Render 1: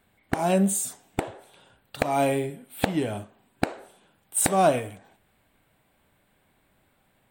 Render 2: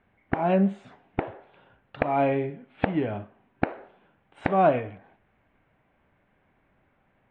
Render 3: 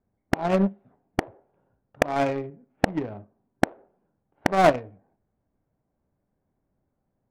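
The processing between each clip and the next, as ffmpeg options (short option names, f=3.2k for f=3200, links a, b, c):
-af "lowpass=f=2.5k:w=0.5412,lowpass=f=2.5k:w=1.3066"
-af "aeval=exprs='0.531*(cos(1*acos(clip(val(0)/0.531,-1,1)))-cos(1*PI/2))+0.0531*(cos(7*acos(clip(val(0)/0.531,-1,1)))-cos(7*PI/2))':c=same,adynamicsmooth=sensitivity=4:basefreq=730,volume=4dB"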